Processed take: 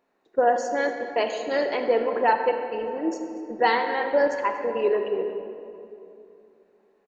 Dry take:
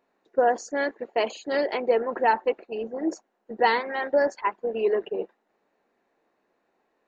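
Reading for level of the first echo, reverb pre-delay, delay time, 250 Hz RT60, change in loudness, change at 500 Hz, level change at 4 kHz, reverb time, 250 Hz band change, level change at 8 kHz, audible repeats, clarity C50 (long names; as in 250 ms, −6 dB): −19.0 dB, 27 ms, 237 ms, 3.5 s, +1.0 dB, +1.5 dB, +1.0 dB, 2.8 s, +1.5 dB, can't be measured, 1, 5.5 dB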